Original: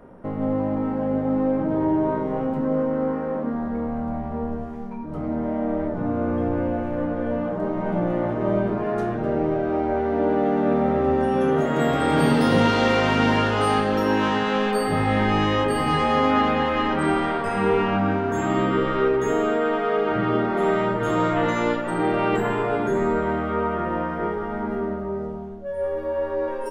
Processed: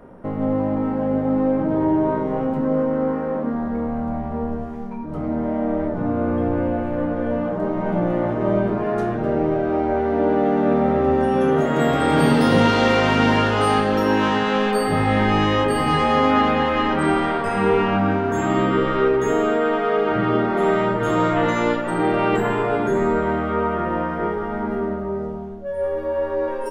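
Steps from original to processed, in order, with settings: 6.12–7.11 s: band-stop 5.8 kHz, Q 5.7; trim +2.5 dB

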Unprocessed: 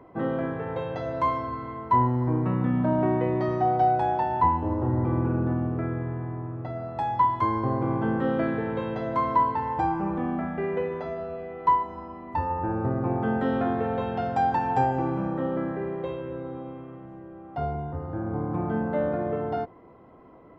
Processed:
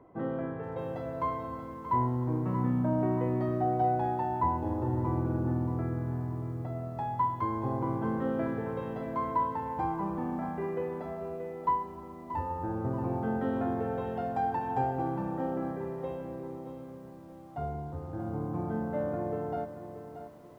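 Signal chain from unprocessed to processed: treble shelf 2.1 kHz -9.5 dB; bit-crushed delay 630 ms, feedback 35%, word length 9-bit, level -10.5 dB; trim -5.5 dB

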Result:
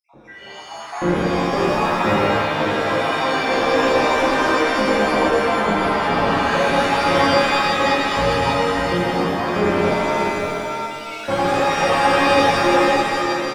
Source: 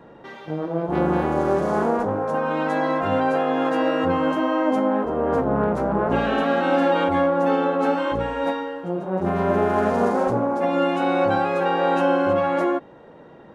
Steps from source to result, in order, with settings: random holes in the spectrogram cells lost 75%; 9.74–11.11 s: elliptic high-pass 2.5 kHz; hard clipper -18.5 dBFS, distortion -14 dB; echo from a far wall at 100 m, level -6 dB; pitch-shifted reverb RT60 2.1 s, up +7 st, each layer -2 dB, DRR -7.5 dB; trim -1 dB

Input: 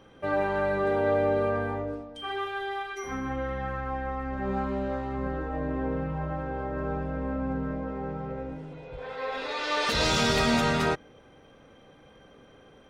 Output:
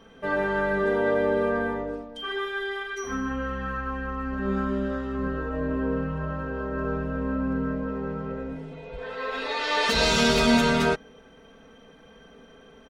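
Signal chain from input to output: comb 4.5 ms, depth 100%

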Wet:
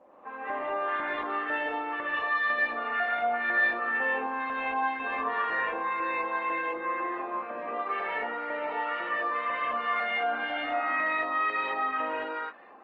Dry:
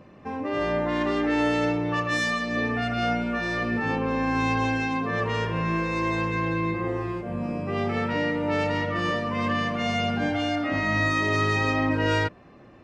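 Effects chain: elliptic band-pass 230–3700 Hz, stop band 60 dB; peak limiter -23.5 dBFS, peak gain reduction 10 dB; LFO band-pass saw up 2 Hz 690–2100 Hz; gated-style reverb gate 250 ms rising, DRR -6 dB; trim +2.5 dB; Opus 20 kbps 48 kHz

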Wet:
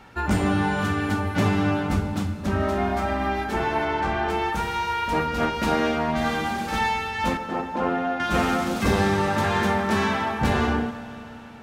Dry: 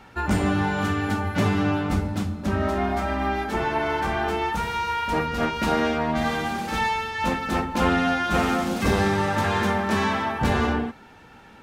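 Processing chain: 3.85–4.30 s: distance through air 63 m; 7.37–8.20 s: band-pass filter 560 Hz, Q 0.76; Schroeder reverb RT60 3.8 s, combs from 29 ms, DRR 12 dB

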